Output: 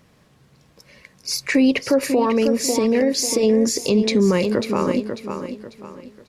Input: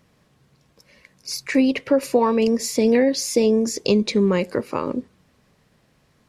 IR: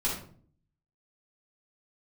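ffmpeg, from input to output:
-filter_complex "[0:a]asettb=1/sr,asplit=3[a][b][c];[a]atrim=end=2.204[d];[b]atrim=start=2.2:end=3.43,asetpts=PTS-STARTPTS,afade=t=in:d=0.004:c=qsin,afade=t=out:st=1.226:d=0.004:c=qsin,acompressor=threshold=-19dB:ratio=6[e];[c]atrim=start=3.426[f];[d][e]acrossfade=d=0.004:c1=hsin:c2=qsin[g];[g][f]acrossfade=d=0.004:c1=qsin:c2=hsin,asplit=2[h][i];[i]aecho=0:1:544|1088|1632|2176:0.316|0.108|0.0366|0.0124[j];[h][j]amix=inputs=2:normalize=0,alimiter=level_in=12dB:limit=-1dB:release=50:level=0:latency=1,volume=-7.5dB"

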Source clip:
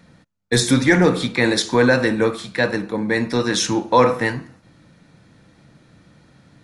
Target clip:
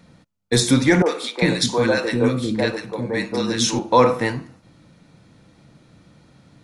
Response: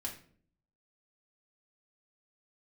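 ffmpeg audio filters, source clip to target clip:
-filter_complex "[0:a]equalizer=f=1.7k:t=o:w=0.4:g=-5.5,asettb=1/sr,asplit=3[a][b][c];[a]atrim=end=1.024[d];[b]atrim=start=1.02:end=3.79,asetpts=PTS-STARTPTS,afade=t=in:d=0.004:c=qsin,afade=t=out:st=2.766:d=0.004:c=qsin,acrossover=split=370|1200[e][f][g];[g]adelay=40[h];[e]adelay=400[i];[i][f][h]amix=inputs=3:normalize=0,atrim=end_sample=122157[j];[c]atrim=start=3.786[k];[d][j]acrossfade=d=0.004:c1=hsin:c2=qsin[l];[l][k]acrossfade=d=0.004:c1=qsin:c2=hsin"

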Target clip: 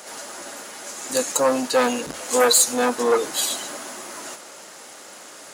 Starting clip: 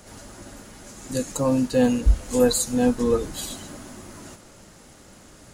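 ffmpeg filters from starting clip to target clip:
-af "aeval=exprs='0.473*(cos(1*acos(clip(val(0)/0.473,-1,1)))-cos(1*PI/2))+0.211*(cos(5*acos(clip(val(0)/0.473,-1,1)))-cos(5*PI/2))':c=same,highpass=530"

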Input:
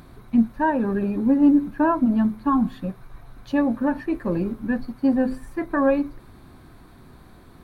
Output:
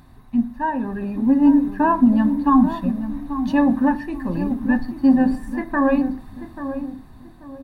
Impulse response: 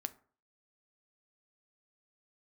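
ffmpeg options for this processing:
-filter_complex "[0:a]dynaudnorm=f=350:g=7:m=11.5dB,aecho=1:1:1.1:0.48[a];[1:a]atrim=start_sample=2205[b];[a][b]afir=irnorm=-1:irlink=0,asettb=1/sr,asplit=3[c][d][e];[c]atrim=end=3.954[f];[d]atrim=start=3.95:end=4.51,asetpts=PTS-STARTPTS,afade=t=in:d=0.004:c=qsin,afade=t=out:st=0.556:d=0.004:c=qsin,acrossover=split=180|3000[g][h][i];[h]acompressor=threshold=-33dB:ratio=1.5[j];[g][j][i]amix=inputs=3:normalize=0[k];[e]atrim=start=4.506[l];[f][k]acrossfade=d=0.004:c1=hsin:c2=qsin[m];[m][l]acrossfade=d=0.004:c1=qsin:c2=hsin,asplit=2[n][o];[o]adelay=837,lowpass=f=880:p=1,volume=-9dB,asplit=2[p][q];[q]adelay=837,lowpass=f=880:p=1,volume=0.35,asplit=2[r][s];[s]adelay=837,lowpass=f=880:p=1,volume=0.35,asplit=2[t][u];[u]adelay=837,lowpass=f=880:p=1,volume=0.35[v];[n][p][r][t][v]amix=inputs=5:normalize=0,volume=-3dB"

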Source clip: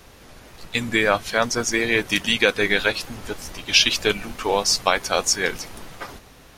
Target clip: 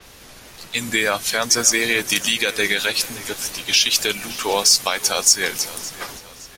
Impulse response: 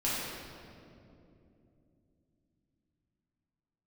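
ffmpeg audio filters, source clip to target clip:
-filter_complex "[0:a]highshelf=f=2.3k:g=9,acrossover=split=100[a][b];[a]acompressor=threshold=-47dB:ratio=6[c];[c][b]amix=inputs=2:normalize=0,alimiter=limit=-5.5dB:level=0:latency=1:release=126,asplit=2[d][e];[e]asoftclip=type=tanh:threshold=-15dB,volume=-11.5dB[f];[d][f]amix=inputs=2:normalize=0,aecho=1:1:567|1134|1701|2268:0.126|0.0604|0.029|0.0139,adynamicequalizer=threshold=0.0316:dfrequency=5500:dqfactor=0.7:tfrequency=5500:tqfactor=0.7:attack=5:release=100:ratio=0.375:range=3.5:mode=boostabove:tftype=highshelf,volume=-2dB"

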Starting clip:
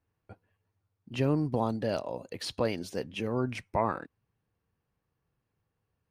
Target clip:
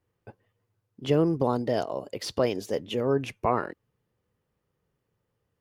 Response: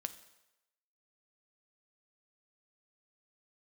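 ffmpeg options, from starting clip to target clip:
-af "asetrate=48000,aresample=44100,equalizer=f=430:w=2.5:g=7,volume=2dB"

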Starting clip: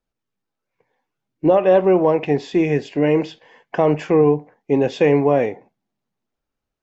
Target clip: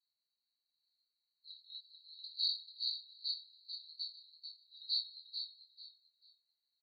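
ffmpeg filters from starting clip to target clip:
-filter_complex "[0:a]asuperpass=centerf=4200:order=20:qfactor=5.3,asplit=2[a][b];[b]adelay=25,volume=-5dB[c];[a][c]amix=inputs=2:normalize=0,aecho=1:1:441|882|1323:0.447|0.112|0.0279,volume=12.5dB"

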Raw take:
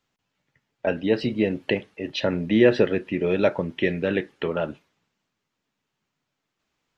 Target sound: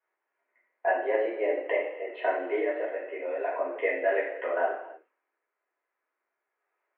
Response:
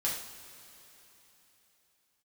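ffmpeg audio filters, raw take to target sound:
-filter_complex "[0:a]asettb=1/sr,asplit=3[a][b][c];[a]atrim=end=2.584[d];[b]atrim=start=2.58:end=3.51,asetpts=PTS-STARTPTS,afade=t=in:d=0.004:c=qsin,afade=t=out:st=0.926:d=0.004:c=qsin,acompressor=threshold=-25dB:ratio=4[e];[c]atrim=start=3.506[f];[d][e]acrossfade=d=0.004:c1=hsin:c2=qsin[g];[g][f]acrossfade=d=0.004:c1=qsin:c2=hsin[h];[1:a]atrim=start_sample=2205,afade=t=out:st=0.38:d=0.01,atrim=end_sample=17199[i];[h][i]afir=irnorm=-1:irlink=0,highpass=f=310:t=q:w=0.5412,highpass=f=310:t=q:w=1.307,lowpass=f=2.1k:t=q:w=0.5176,lowpass=f=2.1k:t=q:w=0.7071,lowpass=f=2.1k:t=q:w=1.932,afreqshift=98,volume=-5dB"

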